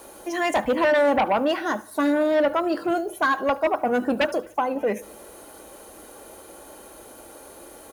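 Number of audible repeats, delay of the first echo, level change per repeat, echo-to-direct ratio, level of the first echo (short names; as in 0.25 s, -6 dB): 3, 73 ms, -5.0 dB, -22.5 dB, -24.0 dB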